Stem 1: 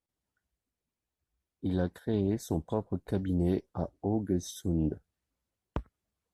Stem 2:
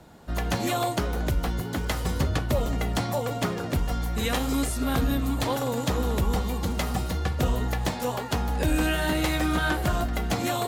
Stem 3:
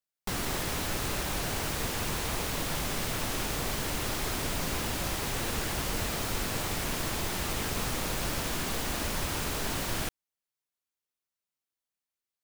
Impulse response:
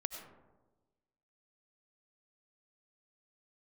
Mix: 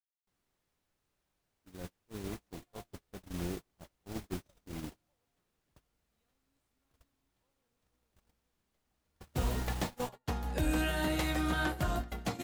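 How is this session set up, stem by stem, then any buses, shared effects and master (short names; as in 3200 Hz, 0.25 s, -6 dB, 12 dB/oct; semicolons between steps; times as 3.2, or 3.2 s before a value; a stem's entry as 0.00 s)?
-11.5 dB, 0.00 s, send -5.5 dB, dry
8.91 s -20.5 dB -> 9.46 s -9.5 dB, 1.95 s, send -9.5 dB, dry
-13.0 dB, 0.00 s, send -10 dB, dry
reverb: on, RT60 1.2 s, pre-delay 55 ms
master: gate -33 dBFS, range -40 dB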